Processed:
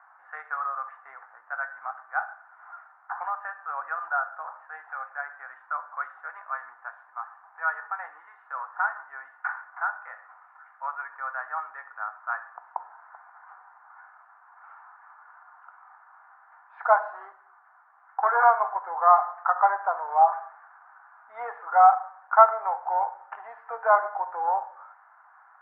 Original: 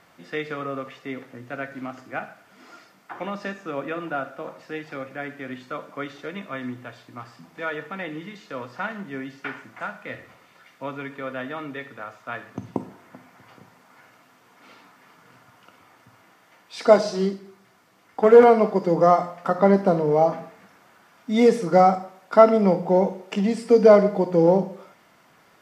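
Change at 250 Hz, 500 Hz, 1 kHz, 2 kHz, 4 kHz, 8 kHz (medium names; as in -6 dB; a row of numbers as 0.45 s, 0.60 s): under -40 dB, -13.0 dB, +2.5 dB, +2.0 dB, under -35 dB, no reading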